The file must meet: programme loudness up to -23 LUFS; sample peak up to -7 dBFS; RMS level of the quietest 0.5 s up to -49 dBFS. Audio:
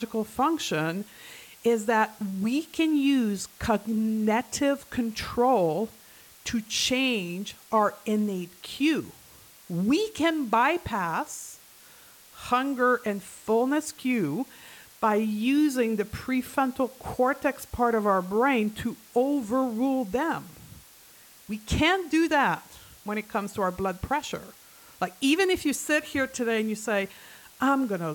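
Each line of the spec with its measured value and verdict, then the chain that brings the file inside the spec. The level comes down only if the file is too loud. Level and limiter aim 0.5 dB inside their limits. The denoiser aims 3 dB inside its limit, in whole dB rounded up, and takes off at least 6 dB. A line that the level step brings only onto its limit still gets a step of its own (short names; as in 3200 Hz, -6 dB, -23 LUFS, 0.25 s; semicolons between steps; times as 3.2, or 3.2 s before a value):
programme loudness -26.5 LUFS: OK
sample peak -10.5 dBFS: OK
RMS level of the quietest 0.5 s -53 dBFS: OK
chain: none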